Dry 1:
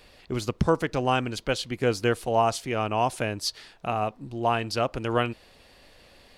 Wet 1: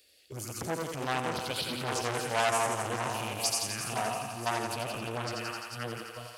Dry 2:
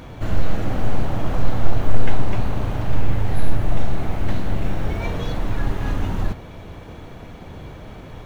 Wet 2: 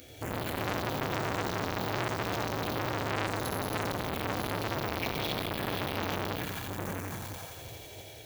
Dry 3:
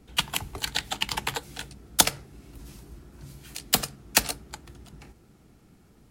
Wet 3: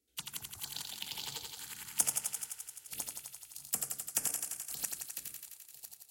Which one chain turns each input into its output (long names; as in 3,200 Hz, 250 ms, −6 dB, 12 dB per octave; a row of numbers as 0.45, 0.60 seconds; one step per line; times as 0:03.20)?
feedback delay that plays each chunk backwards 501 ms, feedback 44%, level −4.5 dB
high-pass filter 88 Hz 12 dB per octave
first-order pre-emphasis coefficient 0.8
noise gate −48 dBFS, range −10 dB
harmonic and percussive parts rebalanced harmonic +7 dB
phaser swept by the level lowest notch 160 Hz, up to 4,000 Hz, full sweep at −27 dBFS
on a send: feedback echo with a high-pass in the loop 86 ms, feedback 78%, high-pass 460 Hz, level −4.5 dB
on the sum: saturating transformer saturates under 2,800 Hz
normalise the peak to −12 dBFS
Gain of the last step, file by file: +5.0, +10.0, −7.5 decibels